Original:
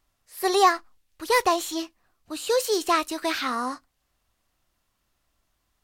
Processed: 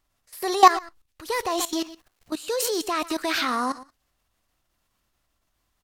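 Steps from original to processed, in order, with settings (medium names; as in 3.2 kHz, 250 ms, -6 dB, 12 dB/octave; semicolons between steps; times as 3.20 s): delay 130 ms -18 dB; 1.23–2.59 s: crackle 550 per s -52 dBFS; level held to a coarse grid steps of 16 dB; trim +7 dB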